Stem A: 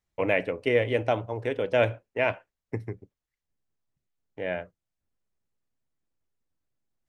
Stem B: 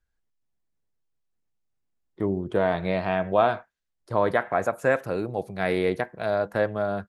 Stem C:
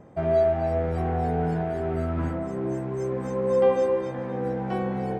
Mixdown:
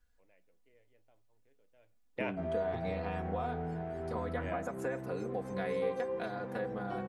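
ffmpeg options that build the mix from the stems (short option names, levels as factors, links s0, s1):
-filter_complex "[0:a]flanger=delay=4.8:depth=2.9:regen=72:speed=0.39:shape=triangular,volume=1.12[s0];[1:a]acompressor=threshold=0.0316:ratio=6,aecho=1:1:4.1:0.97,volume=1.12,asplit=2[s1][s2];[2:a]adelay=2200,volume=0.562[s3];[s2]apad=whole_len=312260[s4];[s0][s4]sidechaingate=range=0.00794:threshold=0.00158:ratio=16:detection=peak[s5];[s5][s1][s3]amix=inputs=3:normalize=0,acompressor=threshold=0.00398:ratio=1.5"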